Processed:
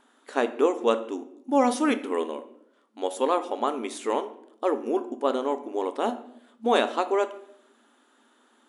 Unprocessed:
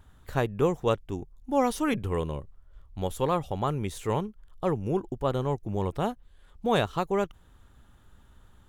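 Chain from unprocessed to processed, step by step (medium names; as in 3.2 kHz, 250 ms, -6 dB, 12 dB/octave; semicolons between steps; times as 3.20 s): simulated room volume 170 m³, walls mixed, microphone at 0.31 m; FFT band-pass 220–11000 Hz; trim +3 dB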